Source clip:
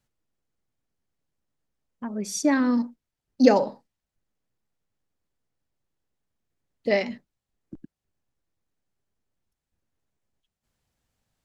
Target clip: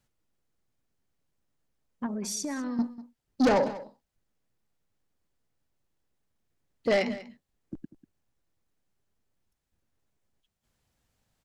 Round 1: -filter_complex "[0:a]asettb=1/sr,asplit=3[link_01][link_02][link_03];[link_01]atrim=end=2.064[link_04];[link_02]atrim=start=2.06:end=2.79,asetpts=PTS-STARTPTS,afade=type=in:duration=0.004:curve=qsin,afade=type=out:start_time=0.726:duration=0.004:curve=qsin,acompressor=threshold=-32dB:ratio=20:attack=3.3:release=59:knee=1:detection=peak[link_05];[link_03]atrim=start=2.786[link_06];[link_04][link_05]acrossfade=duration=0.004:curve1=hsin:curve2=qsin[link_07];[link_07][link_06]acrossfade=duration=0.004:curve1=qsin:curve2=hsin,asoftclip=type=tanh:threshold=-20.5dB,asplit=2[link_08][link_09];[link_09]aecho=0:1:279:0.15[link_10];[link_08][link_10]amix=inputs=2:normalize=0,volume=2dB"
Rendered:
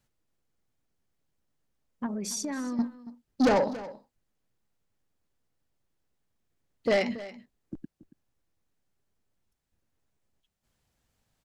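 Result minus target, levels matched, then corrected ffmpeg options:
echo 86 ms late
-filter_complex "[0:a]asettb=1/sr,asplit=3[link_01][link_02][link_03];[link_01]atrim=end=2.064[link_04];[link_02]atrim=start=2.06:end=2.79,asetpts=PTS-STARTPTS,afade=type=in:duration=0.004:curve=qsin,afade=type=out:start_time=0.726:duration=0.004:curve=qsin,acompressor=threshold=-32dB:ratio=20:attack=3.3:release=59:knee=1:detection=peak[link_05];[link_03]atrim=start=2.786[link_06];[link_04][link_05]acrossfade=duration=0.004:curve1=hsin:curve2=qsin[link_07];[link_07][link_06]acrossfade=duration=0.004:curve1=qsin:curve2=hsin,asoftclip=type=tanh:threshold=-20.5dB,asplit=2[link_08][link_09];[link_09]aecho=0:1:193:0.15[link_10];[link_08][link_10]amix=inputs=2:normalize=0,volume=2dB"

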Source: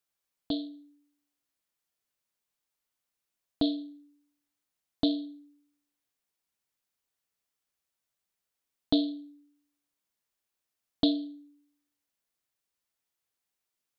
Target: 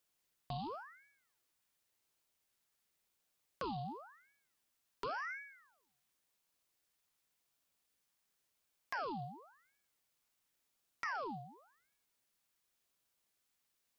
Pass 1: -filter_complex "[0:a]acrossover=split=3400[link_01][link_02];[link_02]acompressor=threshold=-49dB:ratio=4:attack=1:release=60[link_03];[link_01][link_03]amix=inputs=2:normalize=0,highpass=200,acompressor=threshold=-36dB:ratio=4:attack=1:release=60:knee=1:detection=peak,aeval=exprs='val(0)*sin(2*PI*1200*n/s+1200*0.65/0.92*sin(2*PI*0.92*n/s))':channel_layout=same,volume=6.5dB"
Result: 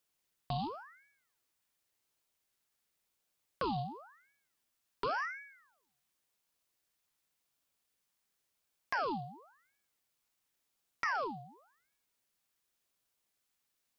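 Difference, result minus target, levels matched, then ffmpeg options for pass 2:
downward compressor: peak gain reduction −6 dB
-filter_complex "[0:a]acrossover=split=3400[link_01][link_02];[link_02]acompressor=threshold=-49dB:ratio=4:attack=1:release=60[link_03];[link_01][link_03]amix=inputs=2:normalize=0,highpass=200,acompressor=threshold=-44dB:ratio=4:attack=1:release=60:knee=1:detection=peak,aeval=exprs='val(0)*sin(2*PI*1200*n/s+1200*0.65/0.92*sin(2*PI*0.92*n/s))':channel_layout=same,volume=6.5dB"

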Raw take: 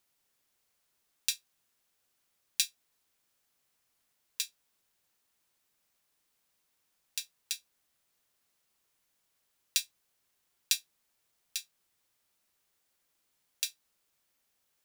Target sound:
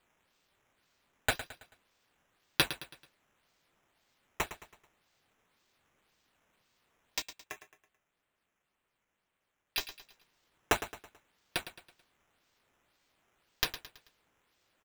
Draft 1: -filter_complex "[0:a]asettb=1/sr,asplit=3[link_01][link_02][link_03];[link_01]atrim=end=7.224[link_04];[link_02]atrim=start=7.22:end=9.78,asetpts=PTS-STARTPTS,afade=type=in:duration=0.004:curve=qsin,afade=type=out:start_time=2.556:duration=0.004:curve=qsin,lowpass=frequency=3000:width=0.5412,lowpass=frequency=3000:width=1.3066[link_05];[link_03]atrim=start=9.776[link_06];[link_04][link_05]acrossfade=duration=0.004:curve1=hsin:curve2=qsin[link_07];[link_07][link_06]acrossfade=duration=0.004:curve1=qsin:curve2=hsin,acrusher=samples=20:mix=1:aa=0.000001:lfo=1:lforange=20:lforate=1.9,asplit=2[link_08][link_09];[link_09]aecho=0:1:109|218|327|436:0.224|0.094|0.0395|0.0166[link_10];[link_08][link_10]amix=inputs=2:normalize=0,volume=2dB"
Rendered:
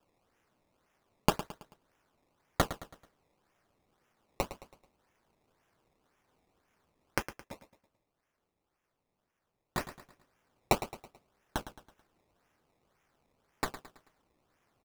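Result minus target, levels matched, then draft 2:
sample-and-hold swept by an LFO: distortion +7 dB
-filter_complex "[0:a]asettb=1/sr,asplit=3[link_01][link_02][link_03];[link_01]atrim=end=7.224[link_04];[link_02]atrim=start=7.22:end=9.78,asetpts=PTS-STARTPTS,afade=type=in:duration=0.004:curve=qsin,afade=type=out:start_time=2.556:duration=0.004:curve=qsin,lowpass=frequency=3000:width=0.5412,lowpass=frequency=3000:width=1.3066[link_05];[link_03]atrim=start=9.776[link_06];[link_04][link_05]acrossfade=duration=0.004:curve1=hsin:curve2=qsin[link_07];[link_07][link_06]acrossfade=duration=0.004:curve1=qsin:curve2=hsin,acrusher=samples=7:mix=1:aa=0.000001:lfo=1:lforange=7:lforate=1.9,asplit=2[link_08][link_09];[link_09]aecho=0:1:109|218|327|436:0.224|0.094|0.0395|0.0166[link_10];[link_08][link_10]amix=inputs=2:normalize=0,volume=2dB"

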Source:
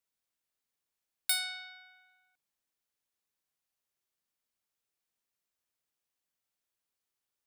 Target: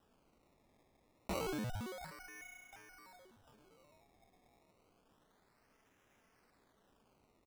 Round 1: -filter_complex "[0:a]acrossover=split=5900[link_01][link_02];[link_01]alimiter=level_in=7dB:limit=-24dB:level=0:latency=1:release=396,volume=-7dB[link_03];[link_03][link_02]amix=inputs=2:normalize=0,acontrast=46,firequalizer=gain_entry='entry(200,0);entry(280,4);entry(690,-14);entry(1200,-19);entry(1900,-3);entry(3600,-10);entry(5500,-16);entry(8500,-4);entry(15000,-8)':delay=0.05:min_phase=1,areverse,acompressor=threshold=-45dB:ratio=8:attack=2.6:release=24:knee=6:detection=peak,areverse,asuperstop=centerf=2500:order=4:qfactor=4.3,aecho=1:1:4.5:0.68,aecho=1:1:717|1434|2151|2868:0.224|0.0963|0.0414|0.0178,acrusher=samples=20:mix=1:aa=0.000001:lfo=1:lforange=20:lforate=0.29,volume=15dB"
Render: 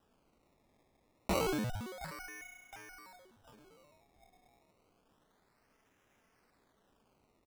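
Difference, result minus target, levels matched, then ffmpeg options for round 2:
downward compressor: peak gain reduction −7 dB
-filter_complex "[0:a]acrossover=split=5900[link_01][link_02];[link_01]alimiter=level_in=7dB:limit=-24dB:level=0:latency=1:release=396,volume=-7dB[link_03];[link_03][link_02]amix=inputs=2:normalize=0,acontrast=46,firequalizer=gain_entry='entry(200,0);entry(280,4);entry(690,-14);entry(1200,-19);entry(1900,-3);entry(3600,-10);entry(5500,-16);entry(8500,-4);entry(15000,-8)':delay=0.05:min_phase=1,areverse,acompressor=threshold=-53dB:ratio=8:attack=2.6:release=24:knee=6:detection=peak,areverse,asuperstop=centerf=2500:order=4:qfactor=4.3,aecho=1:1:4.5:0.68,aecho=1:1:717|1434|2151|2868:0.224|0.0963|0.0414|0.0178,acrusher=samples=20:mix=1:aa=0.000001:lfo=1:lforange=20:lforate=0.29,volume=15dB"

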